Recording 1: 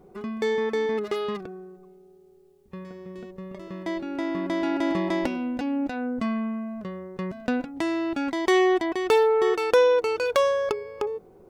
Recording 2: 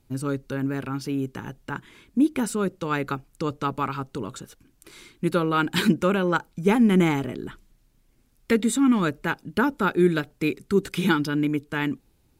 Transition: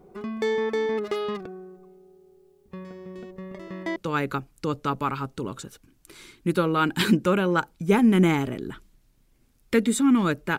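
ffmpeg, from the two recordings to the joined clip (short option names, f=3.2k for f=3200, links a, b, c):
-filter_complex "[0:a]asettb=1/sr,asplit=3[a][b][c];[a]atrim=end=3.364[d];[b]atrim=start=3.36:end=3.96,asetpts=PTS-STARTPTS,afade=t=in:d=0.004:c=qsin,afade=t=out:st=0.596:d=0.004:c=qsin,equalizer=f=1.9k:t=o:w=0.25:g=6.5[e];[c]atrim=start=3.956[f];[d][e]acrossfade=d=0.004:c1=hsin:c2=qsin[g];[g][f]acrossfade=d=0.004:c1=qsin:c2=hsin,apad=whole_dur=10.58,atrim=end=10.58,atrim=end=3.962[h];[1:a]atrim=start=2.728:end=9.35[i];[h][i]acrossfade=d=0.004:c1=hsin:c2=hsin"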